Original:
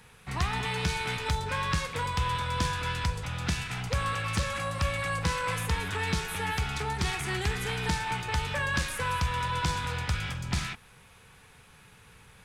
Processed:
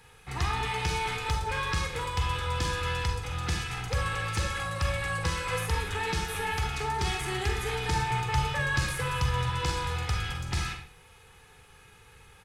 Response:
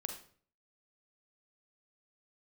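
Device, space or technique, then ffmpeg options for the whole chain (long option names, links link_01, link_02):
microphone above a desk: -filter_complex "[0:a]asettb=1/sr,asplit=3[link_01][link_02][link_03];[link_01]atrim=end=7.914[link_04];[link_02]atrim=start=7.91:end=9.5,asetpts=PTS-STARTPTS,afade=type=in:duration=0.004:curve=qsin,afade=type=out:start_time=1.586:duration=0.004:curve=qsin,equalizer=frequency=130:width=4.1:gain=13[link_05];[link_03]atrim=start=9.496[link_06];[link_04][link_05]acrossfade=duration=0.004:curve1=hsin:curve2=qsin[link_07];[link_07][link_06]acrossfade=duration=0.004:curve1=qsin:curve2=hsin,aecho=1:1:2.4:0.52[link_08];[1:a]atrim=start_sample=2205[link_09];[link_08][link_09]afir=irnorm=-1:irlink=0"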